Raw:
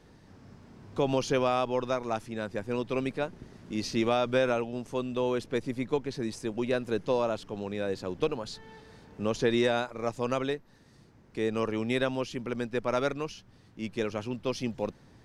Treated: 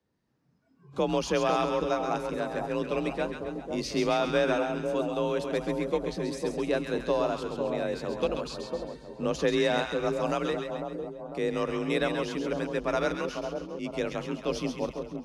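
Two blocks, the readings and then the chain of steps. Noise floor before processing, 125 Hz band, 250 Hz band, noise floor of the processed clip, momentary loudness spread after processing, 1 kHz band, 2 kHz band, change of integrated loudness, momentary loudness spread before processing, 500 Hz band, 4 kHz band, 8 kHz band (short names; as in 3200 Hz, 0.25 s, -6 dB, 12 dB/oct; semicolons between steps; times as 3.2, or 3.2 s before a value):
-58 dBFS, -0.5 dB, +0.5 dB, -64 dBFS, 9 LU, +2.0 dB, +2.0 dB, +1.0 dB, 10 LU, +1.5 dB, +1.5 dB, +1.5 dB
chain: spectral noise reduction 22 dB; split-band echo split 980 Hz, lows 0.5 s, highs 0.134 s, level -5.5 dB; frequency shift +37 Hz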